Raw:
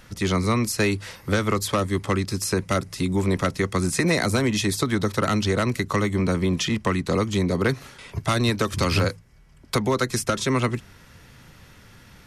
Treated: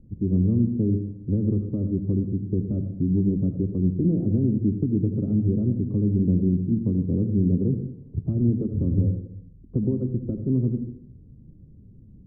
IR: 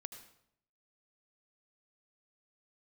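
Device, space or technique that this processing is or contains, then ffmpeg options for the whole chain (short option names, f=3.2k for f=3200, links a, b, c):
next room: -filter_complex "[0:a]lowpass=f=320:w=0.5412,lowpass=f=320:w=1.3066[a];[1:a]atrim=start_sample=2205[b];[a][b]afir=irnorm=-1:irlink=0,volume=6.5dB"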